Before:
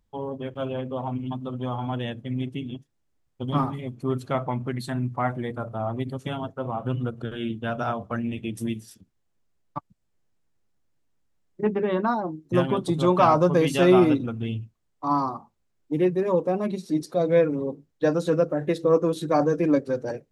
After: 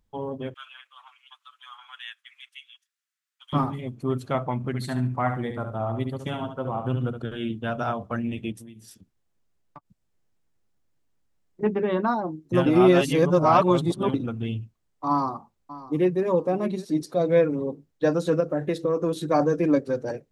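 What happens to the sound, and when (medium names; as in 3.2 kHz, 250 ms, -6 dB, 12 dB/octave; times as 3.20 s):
0.54–3.53 s: steep high-pass 1.3 kHz
4.57–7.19 s: feedback delay 71 ms, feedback 21%, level -8 dB
8.52–11.61 s: compression, threshold -42 dBFS
12.66–14.14 s: reverse
15.09–16.24 s: echo throw 600 ms, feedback 20%, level -16.5 dB
18.40–19.15 s: compression, threshold -19 dBFS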